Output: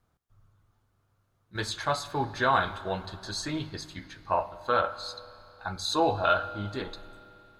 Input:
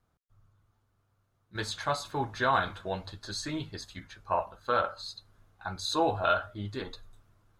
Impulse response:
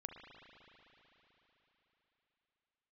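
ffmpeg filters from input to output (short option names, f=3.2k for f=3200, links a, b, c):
-filter_complex "[0:a]asplit=2[a][b];[1:a]atrim=start_sample=2205,asetrate=61740,aresample=44100[c];[b][c]afir=irnorm=-1:irlink=0,volume=-2.5dB[d];[a][d]amix=inputs=2:normalize=0"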